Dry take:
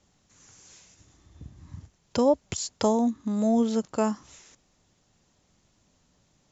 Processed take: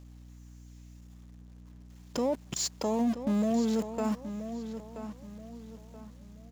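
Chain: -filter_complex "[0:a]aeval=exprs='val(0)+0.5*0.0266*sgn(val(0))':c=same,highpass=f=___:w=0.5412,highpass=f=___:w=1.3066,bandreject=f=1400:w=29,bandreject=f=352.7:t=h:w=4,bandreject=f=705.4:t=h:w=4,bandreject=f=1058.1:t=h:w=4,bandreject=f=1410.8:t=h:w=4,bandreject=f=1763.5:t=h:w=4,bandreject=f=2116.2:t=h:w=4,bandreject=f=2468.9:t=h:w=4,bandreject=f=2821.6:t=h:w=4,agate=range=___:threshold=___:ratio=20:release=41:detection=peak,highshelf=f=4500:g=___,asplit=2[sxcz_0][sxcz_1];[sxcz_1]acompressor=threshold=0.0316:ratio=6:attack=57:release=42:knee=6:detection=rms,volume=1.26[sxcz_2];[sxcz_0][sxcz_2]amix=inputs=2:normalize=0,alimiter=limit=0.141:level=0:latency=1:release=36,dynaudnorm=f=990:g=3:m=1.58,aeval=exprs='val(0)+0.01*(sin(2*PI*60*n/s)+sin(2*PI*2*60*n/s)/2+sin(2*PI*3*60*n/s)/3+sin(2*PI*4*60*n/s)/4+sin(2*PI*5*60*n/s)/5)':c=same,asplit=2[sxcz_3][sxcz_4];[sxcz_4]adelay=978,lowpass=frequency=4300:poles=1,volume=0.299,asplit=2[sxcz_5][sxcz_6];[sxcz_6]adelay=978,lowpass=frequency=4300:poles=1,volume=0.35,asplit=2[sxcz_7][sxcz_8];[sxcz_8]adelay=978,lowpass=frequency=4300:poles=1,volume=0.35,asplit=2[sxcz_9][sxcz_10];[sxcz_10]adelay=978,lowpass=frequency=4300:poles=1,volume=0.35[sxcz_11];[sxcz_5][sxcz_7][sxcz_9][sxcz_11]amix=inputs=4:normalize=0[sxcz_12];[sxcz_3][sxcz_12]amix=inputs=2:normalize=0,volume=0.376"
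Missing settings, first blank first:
140, 140, 0.0447, 0.0224, -4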